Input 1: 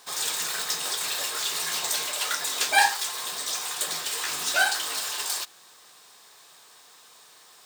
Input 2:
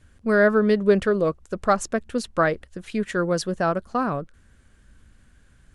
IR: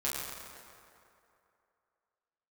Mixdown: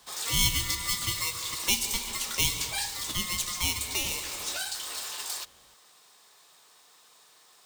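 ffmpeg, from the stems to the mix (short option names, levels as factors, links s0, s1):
-filter_complex "[0:a]bandreject=f=1600:w=24,volume=0.531[s0];[1:a]highpass=680,aeval=exprs='val(0)*sgn(sin(2*PI*1600*n/s))':c=same,volume=0.841,asplit=2[s1][s2];[s2]volume=0.355[s3];[2:a]atrim=start_sample=2205[s4];[s3][s4]afir=irnorm=-1:irlink=0[s5];[s0][s1][s5]amix=inputs=3:normalize=0,acrossover=split=170|3000[s6][s7][s8];[s7]acompressor=threshold=0.01:ratio=5[s9];[s6][s9][s8]amix=inputs=3:normalize=0"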